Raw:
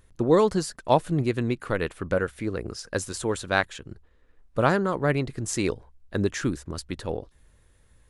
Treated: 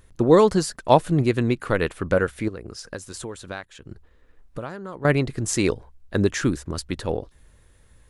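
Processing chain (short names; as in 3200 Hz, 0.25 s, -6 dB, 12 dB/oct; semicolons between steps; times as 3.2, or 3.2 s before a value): 2.48–5.05 compressor 5:1, threshold -37 dBFS, peak gain reduction 19 dB; gain +4.5 dB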